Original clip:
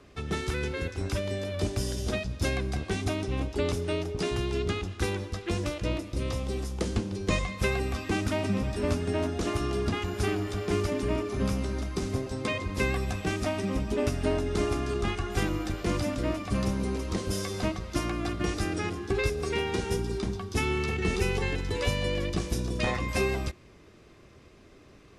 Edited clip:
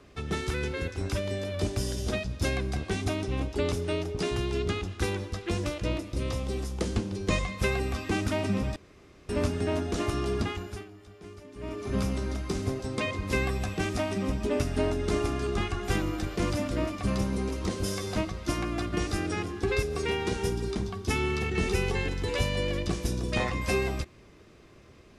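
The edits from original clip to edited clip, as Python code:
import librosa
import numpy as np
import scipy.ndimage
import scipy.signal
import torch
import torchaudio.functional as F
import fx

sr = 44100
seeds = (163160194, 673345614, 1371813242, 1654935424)

y = fx.edit(x, sr, fx.insert_room_tone(at_s=8.76, length_s=0.53),
    fx.fade_down_up(start_s=9.86, length_s=1.6, db=-18.5, fade_s=0.46), tone=tone)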